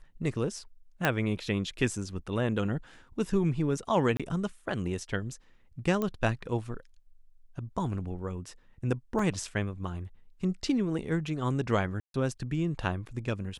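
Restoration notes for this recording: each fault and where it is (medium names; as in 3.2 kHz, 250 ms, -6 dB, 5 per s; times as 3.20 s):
1.05 s: pop -11 dBFS
4.17–4.20 s: dropout 26 ms
6.02 s: pop -18 dBFS
9.19 s: dropout 3.4 ms
12.00–12.14 s: dropout 142 ms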